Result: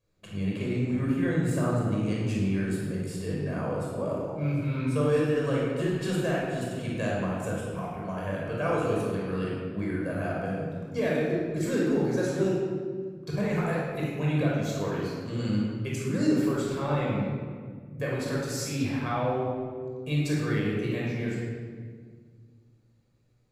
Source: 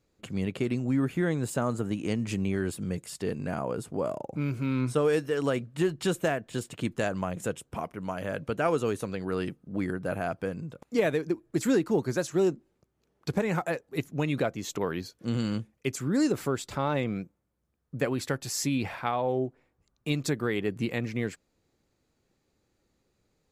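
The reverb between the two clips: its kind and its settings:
rectangular room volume 2,400 cubic metres, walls mixed, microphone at 5.5 metres
level −9 dB

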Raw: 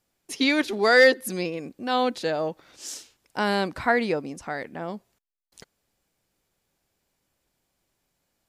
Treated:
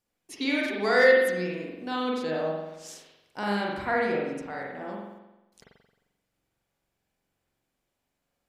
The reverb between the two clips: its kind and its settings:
spring reverb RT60 1 s, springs 44 ms, chirp 65 ms, DRR −3.5 dB
level −8.5 dB

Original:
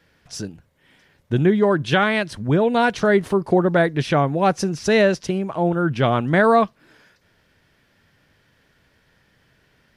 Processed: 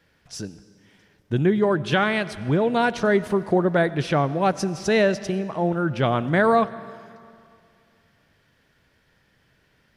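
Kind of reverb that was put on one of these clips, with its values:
comb and all-pass reverb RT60 2.4 s, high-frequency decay 0.85×, pre-delay 50 ms, DRR 16 dB
level −3 dB

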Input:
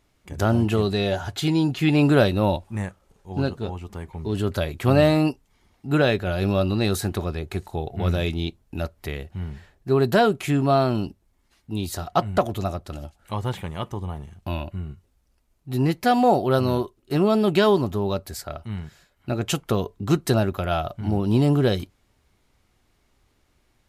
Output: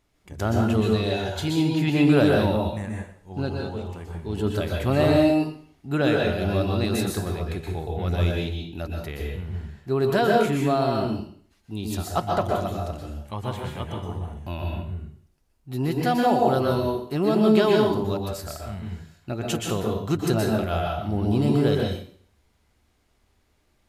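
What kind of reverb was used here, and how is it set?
dense smooth reverb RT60 0.52 s, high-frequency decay 1×, pre-delay 110 ms, DRR −0.5 dB
level −4.5 dB

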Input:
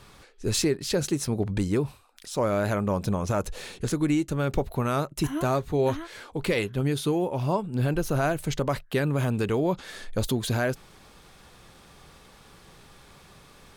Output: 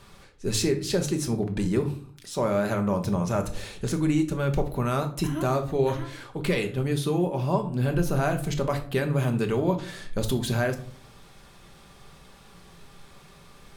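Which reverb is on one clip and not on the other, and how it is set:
rectangular room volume 470 cubic metres, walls furnished, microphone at 1.2 metres
level −1.5 dB

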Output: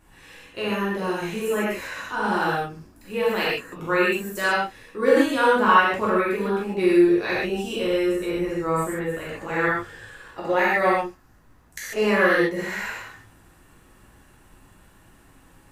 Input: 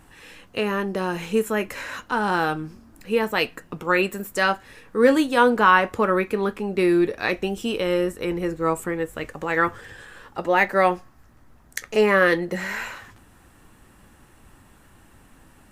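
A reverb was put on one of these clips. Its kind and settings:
reverb whose tail is shaped and stops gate 170 ms flat, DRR −8 dB
level −9 dB

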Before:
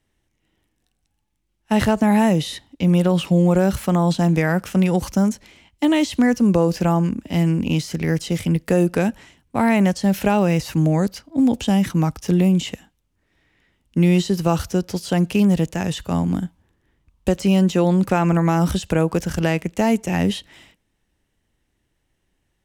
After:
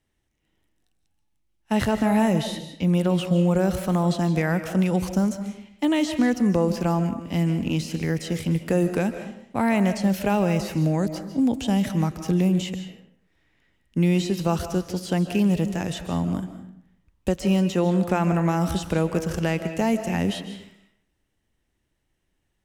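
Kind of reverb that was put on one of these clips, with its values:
comb and all-pass reverb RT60 0.69 s, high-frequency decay 0.7×, pre-delay 110 ms, DRR 9 dB
level −4.5 dB

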